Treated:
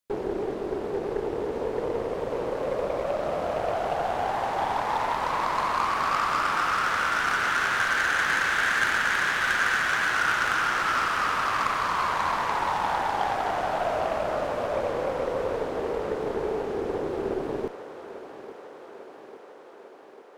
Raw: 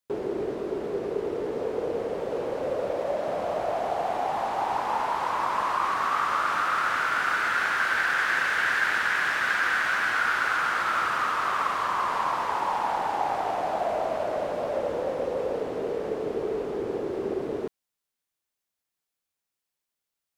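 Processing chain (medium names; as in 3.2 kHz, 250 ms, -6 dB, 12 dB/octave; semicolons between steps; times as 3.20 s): Chebyshev shaper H 2 -14 dB, 8 -21 dB, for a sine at -12 dBFS; thinning echo 847 ms, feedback 72%, high-pass 190 Hz, level -13.5 dB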